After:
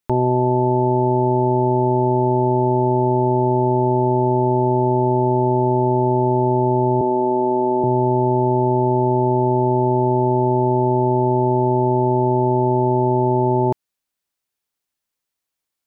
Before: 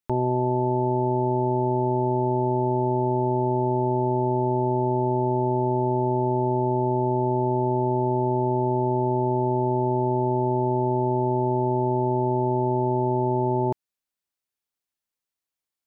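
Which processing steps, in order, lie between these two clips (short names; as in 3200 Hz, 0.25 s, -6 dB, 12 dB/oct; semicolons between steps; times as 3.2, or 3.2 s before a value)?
7.01–7.84 HPF 200 Hz 24 dB/oct; gain +6 dB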